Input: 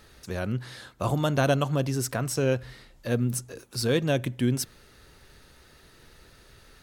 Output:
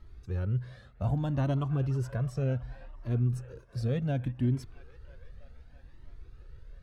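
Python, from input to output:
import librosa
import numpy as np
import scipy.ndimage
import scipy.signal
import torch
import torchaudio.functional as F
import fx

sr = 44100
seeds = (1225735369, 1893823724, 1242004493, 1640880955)

y = fx.riaa(x, sr, side='playback')
y = fx.echo_wet_bandpass(y, sr, ms=329, feedback_pct=74, hz=1400.0, wet_db=-14.5)
y = fx.comb_cascade(y, sr, direction='rising', hz=0.66)
y = y * 10.0 ** (-7.0 / 20.0)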